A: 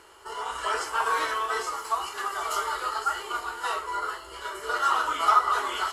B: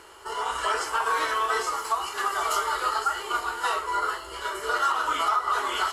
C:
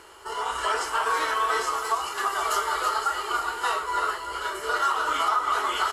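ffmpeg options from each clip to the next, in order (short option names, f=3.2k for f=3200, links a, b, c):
-af "alimiter=limit=-19dB:level=0:latency=1:release=274,volume=4dB"
-af "aecho=1:1:325:0.398"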